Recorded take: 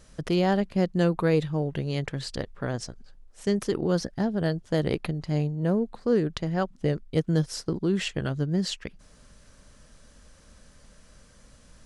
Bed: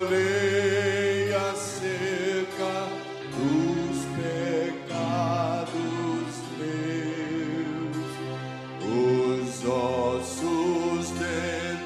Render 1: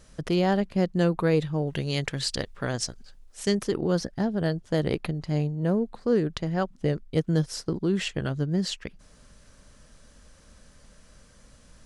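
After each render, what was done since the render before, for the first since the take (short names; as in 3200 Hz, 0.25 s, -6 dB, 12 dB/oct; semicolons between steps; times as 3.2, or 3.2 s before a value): 1.67–3.55 high shelf 2000 Hz +9.5 dB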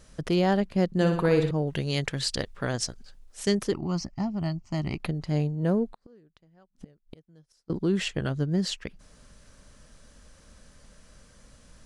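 0.86–1.51 flutter echo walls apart 10.2 m, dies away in 0.58 s; 3.73–5 fixed phaser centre 2400 Hz, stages 8; 5.86–7.7 flipped gate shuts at -28 dBFS, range -32 dB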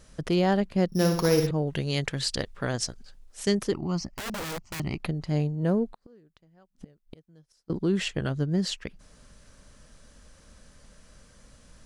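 0.88–1.47 sample sorter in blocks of 8 samples; 4.17–4.8 wrapped overs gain 30 dB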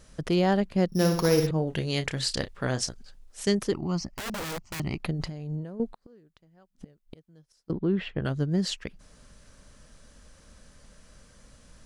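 1.52–2.89 doubler 31 ms -11 dB; 5.15–5.8 negative-ratio compressor -35 dBFS; 7.71–8.25 air absorption 410 m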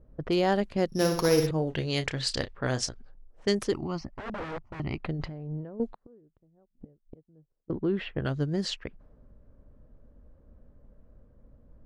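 bell 180 Hz -7 dB 0.34 oct; low-pass opened by the level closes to 430 Hz, open at -23.5 dBFS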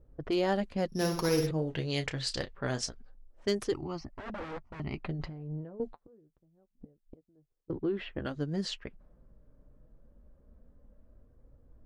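hard clip -13.5 dBFS, distortion -35 dB; flange 0.26 Hz, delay 2.2 ms, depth 4.6 ms, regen -51%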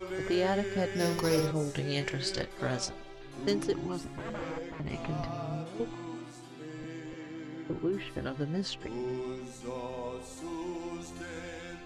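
add bed -13 dB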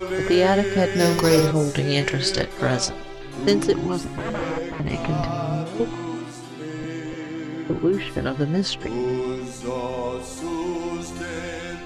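gain +11 dB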